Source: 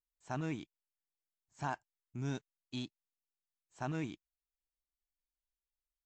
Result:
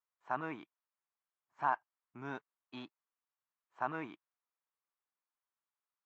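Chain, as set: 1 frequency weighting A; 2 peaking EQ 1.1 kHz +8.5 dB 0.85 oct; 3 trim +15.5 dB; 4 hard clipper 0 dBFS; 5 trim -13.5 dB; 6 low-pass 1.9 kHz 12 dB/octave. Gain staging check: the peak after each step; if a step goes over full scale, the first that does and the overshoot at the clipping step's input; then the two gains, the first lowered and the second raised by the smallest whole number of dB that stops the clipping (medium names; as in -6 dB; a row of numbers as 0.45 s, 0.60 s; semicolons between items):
-25.0 dBFS, -20.5 dBFS, -5.0 dBFS, -5.0 dBFS, -18.5 dBFS, -19.0 dBFS; nothing clips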